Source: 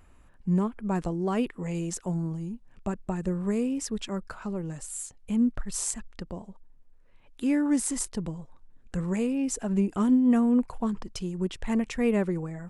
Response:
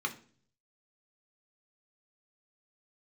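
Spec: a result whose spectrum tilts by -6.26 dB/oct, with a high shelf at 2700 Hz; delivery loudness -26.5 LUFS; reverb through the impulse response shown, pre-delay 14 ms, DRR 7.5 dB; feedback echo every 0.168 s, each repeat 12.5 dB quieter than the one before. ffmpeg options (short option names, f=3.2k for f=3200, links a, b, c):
-filter_complex "[0:a]highshelf=f=2.7k:g=-7,aecho=1:1:168|336|504:0.237|0.0569|0.0137,asplit=2[a][b];[1:a]atrim=start_sample=2205,adelay=14[c];[b][c]afir=irnorm=-1:irlink=0,volume=-12.5dB[d];[a][d]amix=inputs=2:normalize=0,volume=1.5dB"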